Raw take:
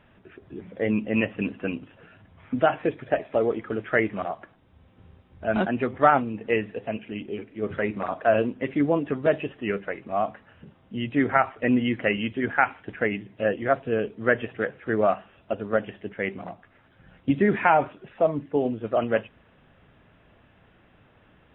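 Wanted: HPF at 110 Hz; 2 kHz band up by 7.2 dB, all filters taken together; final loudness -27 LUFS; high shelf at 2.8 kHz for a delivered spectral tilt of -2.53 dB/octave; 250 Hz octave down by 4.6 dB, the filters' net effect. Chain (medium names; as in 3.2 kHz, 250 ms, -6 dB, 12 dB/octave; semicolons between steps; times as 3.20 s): high-pass 110 Hz; peaking EQ 250 Hz -5.5 dB; peaking EQ 2 kHz +7 dB; treble shelf 2.8 kHz +6 dB; trim -3.5 dB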